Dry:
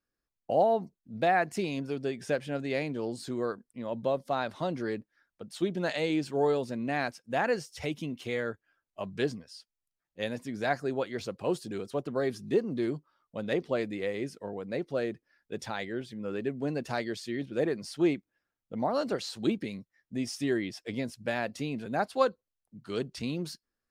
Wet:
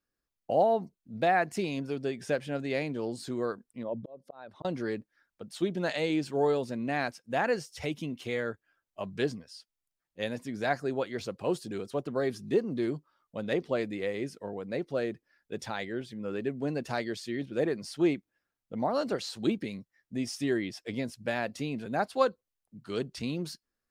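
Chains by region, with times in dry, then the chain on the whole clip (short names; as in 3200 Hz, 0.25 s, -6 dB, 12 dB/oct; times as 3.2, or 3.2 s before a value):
3.83–4.65 formant sharpening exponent 1.5 + auto swell 0.613 s
whole clip: dry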